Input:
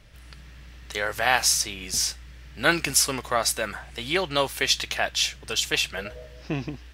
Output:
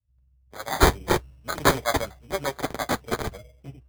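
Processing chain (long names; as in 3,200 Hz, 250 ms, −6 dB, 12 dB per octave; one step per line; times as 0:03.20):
adaptive Wiener filter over 41 samples
high-pass filter 81 Hz 12 dB per octave
convolution reverb, pre-delay 4 ms, DRR 16.5 dB
time stretch by overlap-add 0.56×, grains 92 ms
notch comb filter 170 Hz
in parallel at −10 dB: hard clipping −17 dBFS, distortion −16 dB
on the sum: brickwall limiter −16 dBFS, peak gain reduction 9 dB
notch filter 420 Hz, Q 12
pitch vibrato 0.42 Hz 7.3 cents
graphic EQ with 10 bands 250 Hz −7 dB, 1,000 Hz +3 dB, 2,000 Hz −4 dB, 8,000 Hz +5 dB
decimation without filtering 16×
multiband upward and downward expander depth 100%
level +3.5 dB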